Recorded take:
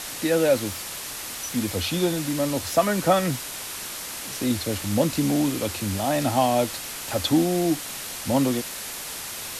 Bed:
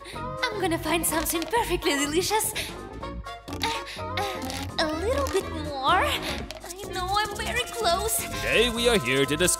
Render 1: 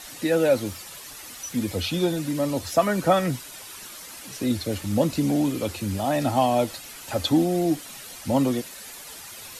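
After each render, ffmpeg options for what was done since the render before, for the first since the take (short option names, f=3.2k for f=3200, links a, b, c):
-af "afftdn=nr=10:nf=-35"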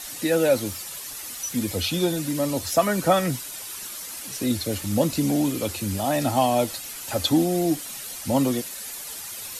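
-af "highshelf=f=5.3k:g=8"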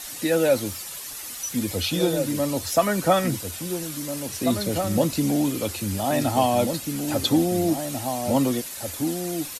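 -filter_complex "[0:a]asplit=2[a][b];[b]adelay=1691,volume=-6dB,highshelf=f=4k:g=-38[c];[a][c]amix=inputs=2:normalize=0"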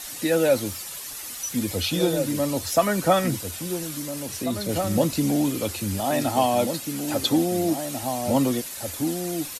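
-filter_complex "[0:a]asettb=1/sr,asplit=3[a][b][c];[a]atrim=end=4.014[d];[b]atrim=start=4.01:end=4.69,asetpts=PTS-STARTPTS,afade=t=in:d=0.004:c=qsin,afade=t=out:st=0.676:d=0.004:c=qsin,acompressor=threshold=-29dB:ratio=1.5:attack=3.2:release=140:knee=1:detection=peak[e];[c]atrim=start=4.686[f];[d][e]acrossfade=d=0.004:c1=hsin:c2=qsin[g];[g][f]acrossfade=d=0.004:c1=qsin:c2=hsin,asettb=1/sr,asplit=3[h][i][j];[h]atrim=end=6.004[k];[i]atrim=start=6:end=8.03,asetpts=PTS-STARTPTS,afade=t=in:d=0.004:c=qsin,afade=t=out:st=2.026:d=0.004:c=qsin,highpass=f=160:p=1[l];[j]atrim=start=8.026[m];[k][l]acrossfade=d=0.004:c1=hsin:c2=qsin[n];[n][m]acrossfade=d=0.004:c1=qsin:c2=hsin"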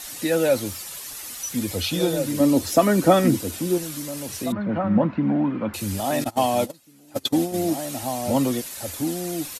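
-filter_complex "[0:a]asettb=1/sr,asplit=3[a][b][c];[a]atrim=end=2.404[d];[b]atrim=start=2.4:end=3.78,asetpts=PTS-STARTPTS,afade=t=in:d=0.004:c=qsin,afade=t=out:st=1.376:d=0.004:c=qsin,equalizer=f=290:w=1.1:g=10.5[e];[c]atrim=start=3.776[f];[d][e]acrossfade=d=0.004:c1=hsin:c2=qsin[g];[g][f]acrossfade=d=0.004:c1=qsin:c2=hsin,asettb=1/sr,asplit=3[h][i][j];[h]atrim=end=4.524[k];[i]atrim=start=4.52:end=5.74,asetpts=PTS-STARTPTS,afade=t=in:d=0.004:c=qsin,afade=t=out:st=1.216:d=0.004:c=qsin,highpass=110,equalizer=f=210:t=q:w=4:g=9,equalizer=f=430:t=q:w=4:g=-6,equalizer=f=990:t=q:w=4:g=7,equalizer=f=1.5k:t=q:w=4:g=5,lowpass=f=2.1k:w=0.5412,lowpass=f=2.1k:w=1.3066[l];[j]atrim=start=5.736[m];[k][l]acrossfade=d=0.004:c1=hsin:c2=qsin[n];[n][m]acrossfade=d=0.004:c1=qsin:c2=hsin,asettb=1/sr,asplit=3[o][p][q];[o]atrim=end=6.244[r];[p]atrim=start=6.24:end=7.54,asetpts=PTS-STARTPTS,afade=t=in:d=0.004:c=qsin,afade=t=out:st=1.296:d=0.004:c=qsin,agate=range=-23dB:threshold=-24dB:ratio=16:release=100:detection=peak[s];[q]atrim=start=7.536[t];[r][s]acrossfade=d=0.004:c1=hsin:c2=qsin[u];[u][t]acrossfade=d=0.004:c1=qsin:c2=hsin"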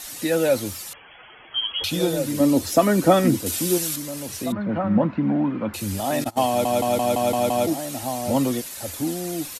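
-filter_complex "[0:a]asettb=1/sr,asplit=3[a][b][c];[a]atrim=end=0.934[d];[b]atrim=start=0.93:end=1.84,asetpts=PTS-STARTPTS,afade=t=in:d=0.004:c=qsin,afade=t=out:st=0.906:d=0.004:c=qsin,lowpass=f=2.9k:t=q:w=0.5098,lowpass=f=2.9k:t=q:w=0.6013,lowpass=f=2.9k:t=q:w=0.9,lowpass=f=2.9k:t=q:w=2.563,afreqshift=-3400[e];[c]atrim=start=1.836[f];[d][e]acrossfade=d=0.004:c1=hsin:c2=qsin[g];[g][f]acrossfade=d=0.004:c1=qsin:c2=hsin,asettb=1/sr,asplit=3[h][i][j];[h]atrim=end=3.464[k];[i]atrim=start=3.46:end=3.96,asetpts=PTS-STARTPTS,afade=t=in:d=0.004:c=qsin,afade=t=out:st=0.496:d=0.004:c=qsin,highshelf=f=2.2k:g=9.5[l];[j]atrim=start=3.956[m];[k][l]acrossfade=d=0.004:c1=hsin:c2=qsin[n];[n][m]acrossfade=d=0.004:c1=qsin:c2=hsin,asplit=8[o][p][q][r][s][t][u][v];[o]atrim=end=6.652[w];[p]atrim=start=6.478:end=6.652[x];[q]atrim=start=6.478:end=6.652[y];[r]atrim=start=6.478:end=6.652[z];[s]atrim=start=6.478:end=6.652[aa];[t]atrim=start=6.478:end=6.652[ab];[u]atrim=start=6.478:end=6.652[ac];[v]atrim=start=7.668[ad];[w][x]acrossfade=d=0.004:c1=hsin:c2=hsin[ae];[ae][y]acrossfade=d=0.004:c1=hsin:c2=hsin[af];[af][z]acrossfade=d=0.004:c1=hsin:c2=hsin[ag];[ag][aa]acrossfade=d=0.004:c1=hsin:c2=hsin[ah];[ah][ab]acrossfade=d=0.004:c1=hsin:c2=hsin[ai];[ai][ac]acrossfade=d=0.004:c1=hsin:c2=hsin[aj];[aj][ad]acrossfade=d=0.004:c1=hsin:c2=hsin"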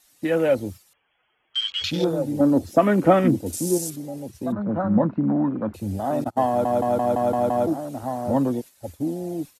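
-af "agate=range=-7dB:threshold=-33dB:ratio=16:detection=peak,afwtdn=0.0282"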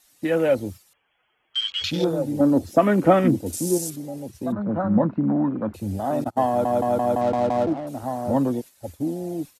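-filter_complex "[0:a]asettb=1/sr,asplit=3[a][b][c];[a]atrim=end=7.214[d];[b]atrim=start=7.21:end=7.87,asetpts=PTS-STARTPTS,afade=t=in:d=0.004:c=qsin,afade=t=out:st=0.656:d=0.004:c=qsin,adynamicsmooth=sensitivity=6.5:basefreq=570[e];[c]atrim=start=7.866[f];[d][e]acrossfade=d=0.004:c1=hsin:c2=qsin[g];[g][f]acrossfade=d=0.004:c1=qsin:c2=hsin"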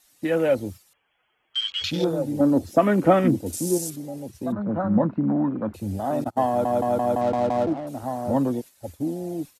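-af "volume=-1dB"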